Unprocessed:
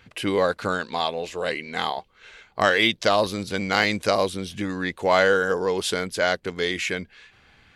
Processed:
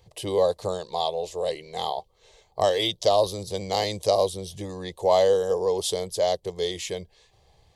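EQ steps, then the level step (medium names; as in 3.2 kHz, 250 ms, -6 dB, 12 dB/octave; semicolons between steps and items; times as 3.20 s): dynamic bell 3.2 kHz, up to +6 dB, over -42 dBFS, Q 2.6; peaking EQ 2.5 kHz -14 dB 0.97 oct; static phaser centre 600 Hz, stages 4; +2.0 dB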